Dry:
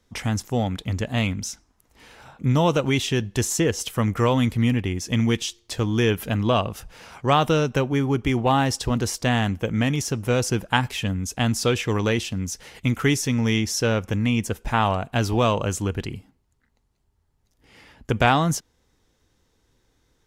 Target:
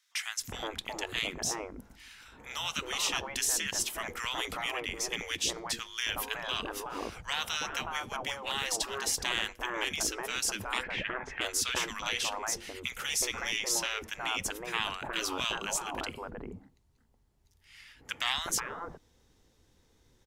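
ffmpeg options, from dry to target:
-filter_complex "[0:a]asplit=3[a][b][c];[a]afade=t=out:st=10.82:d=0.02[d];[b]lowpass=f=1.9k:t=q:w=3.2,afade=t=in:st=10.82:d=0.02,afade=t=out:st=11.4:d=0.02[e];[c]afade=t=in:st=11.4:d=0.02[f];[d][e][f]amix=inputs=3:normalize=0,acrossover=split=1400[g][h];[g]adelay=370[i];[i][h]amix=inputs=2:normalize=0,afftfilt=real='re*lt(hypot(re,im),0.126)':imag='im*lt(hypot(re,im),0.126)':win_size=1024:overlap=0.75"

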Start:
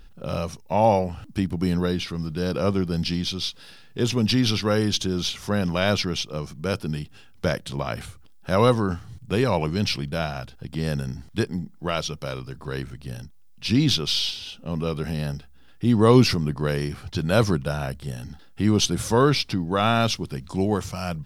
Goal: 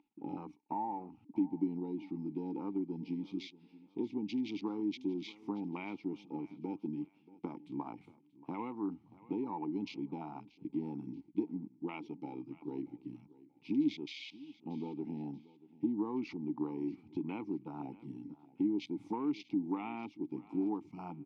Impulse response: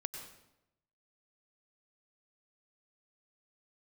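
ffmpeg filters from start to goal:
-filter_complex "[0:a]afwtdn=0.0398,highpass=180,acompressor=threshold=-30dB:ratio=6,asplit=3[a][b][c];[a]bandpass=f=300:t=q:w=8,volume=0dB[d];[b]bandpass=f=870:t=q:w=8,volume=-6dB[e];[c]bandpass=f=2.24k:t=q:w=8,volume=-9dB[f];[d][e][f]amix=inputs=3:normalize=0,asplit=2[g][h];[h]aecho=0:1:632|1264:0.1|0.03[i];[g][i]amix=inputs=2:normalize=0,volume=7.5dB"

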